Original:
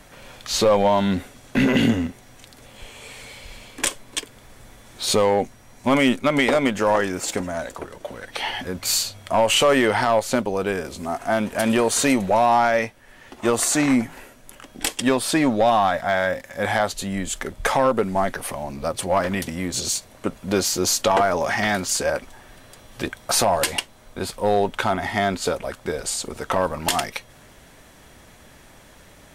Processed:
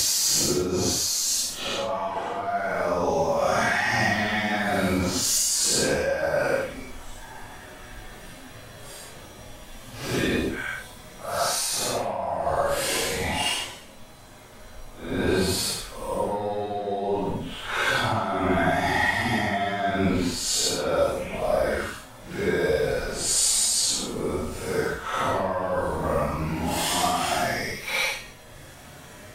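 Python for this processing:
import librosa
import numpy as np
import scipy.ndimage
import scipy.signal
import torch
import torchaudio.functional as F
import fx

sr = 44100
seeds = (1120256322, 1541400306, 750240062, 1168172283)

y = fx.over_compress(x, sr, threshold_db=-25.0, ratio=-1.0)
y = fx.paulstretch(y, sr, seeds[0], factor=4.3, window_s=0.1, from_s=20.65)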